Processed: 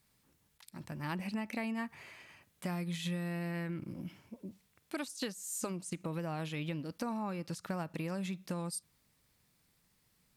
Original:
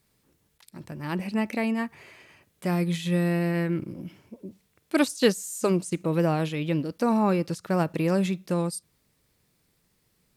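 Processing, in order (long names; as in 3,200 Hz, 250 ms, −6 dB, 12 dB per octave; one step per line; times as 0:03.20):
downward compressor 12 to 1, threshold −29 dBFS, peak gain reduction 15.5 dB
drawn EQ curve 250 Hz 0 dB, 390 Hz −5 dB, 840 Hz +2 dB
level −4.5 dB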